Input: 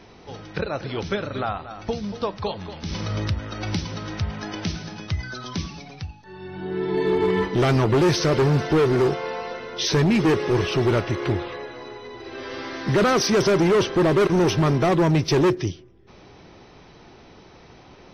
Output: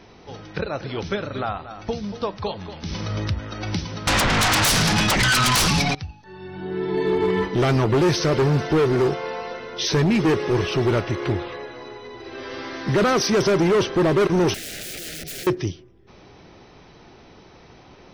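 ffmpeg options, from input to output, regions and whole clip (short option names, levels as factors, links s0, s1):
-filter_complex "[0:a]asettb=1/sr,asplit=3[s0][s1][s2];[s0]atrim=end=4.074[s3];[s1]atrim=start=4.07:end=5.95,asetpts=PTS-STARTPTS,afade=t=in:d=0.004:c=qsin,afade=t=out:st=1.876:d=0.004:c=qsin,aeval=exprs='0.2*sin(PI/2*10*val(0)/0.2)':c=same,equalizer=f=400:w=1:g=-7.5[s4];[s2]atrim=start=5.946[s5];[s3][s4]acrossfade=d=0.004:c1=hsin:c2=qsin[s6];[s6][s5]acrossfade=d=0.004:c1=qsin:c2=hsin,asettb=1/sr,asplit=3[s7][s8][s9];[s7]atrim=end=14.544[s10];[s8]atrim=start=14.54:end=15.47,asetpts=PTS-STARTPTS,afade=t=in:d=0.004:c=qsin,afade=t=out:st=0.926:d=0.004:c=qsin,aeval=exprs='val(0)+0.00631*sin(2*PI*720*n/s)':c=same,aeval=exprs='(mod(23.7*val(0)+1,2)-1)/23.7':c=same,asuperstop=centerf=1000:order=4:qfactor=1[s11];[s9]atrim=start=15.466[s12];[s10][s11]acrossfade=d=0.004:c1=hsin:c2=qsin[s13];[s13][s12]acrossfade=d=0.004:c1=qsin:c2=hsin"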